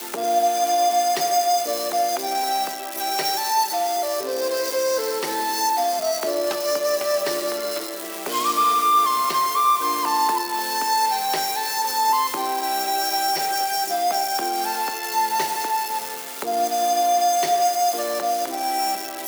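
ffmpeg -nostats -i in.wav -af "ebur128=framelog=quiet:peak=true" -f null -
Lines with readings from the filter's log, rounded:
Integrated loudness:
  I:         -21.6 LUFS
  Threshold: -31.6 LUFS
Loudness range:
  LRA:         2.7 LU
  Threshold: -41.7 LUFS
  LRA low:   -22.9 LUFS
  LRA high:  -20.2 LUFS
True peak:
  Peak:       -8.7 dBFS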